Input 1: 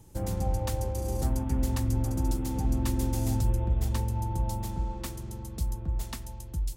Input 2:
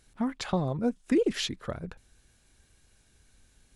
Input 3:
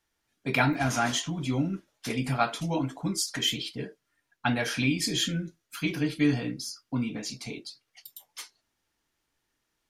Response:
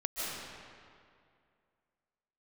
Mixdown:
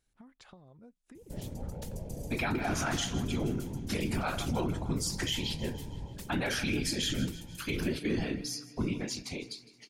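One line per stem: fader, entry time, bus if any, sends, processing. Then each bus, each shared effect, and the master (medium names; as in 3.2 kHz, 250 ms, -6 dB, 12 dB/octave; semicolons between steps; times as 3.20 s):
-7.0 dB, 1.15 s, bus A, no send, no echo send, peaking EQ 1.1 kHz -10 dB 1.2 oct; peak limiter -23.5 dBFS, peak gain reduction 7.5 dB
-16.5 dB, 0.00 s, no bus, no send, no echo send, compression 8:1, threshold -35 dBFS, peak gain reduction 14.5 dB
-1.0 dB, 1.85 s, bus A, no send, echo send -18 dB, none
bus A: 0.0 dB, whisper effect; peak limiter -22.5 dBFS, peak gain reduction 10.5 dB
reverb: none
echo: feedback delay 157 ms, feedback 56%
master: none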